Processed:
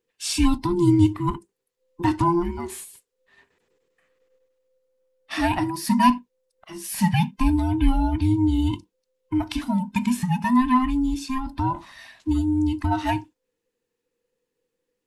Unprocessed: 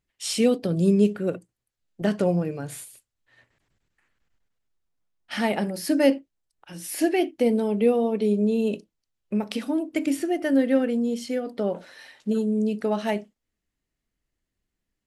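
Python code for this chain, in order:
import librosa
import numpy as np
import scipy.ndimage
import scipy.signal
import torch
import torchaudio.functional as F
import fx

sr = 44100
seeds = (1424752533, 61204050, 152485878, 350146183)

y = fx.band_invert(x, sr, width_hz=500)
y = y * 10.0 ** (2.0 / 20.0)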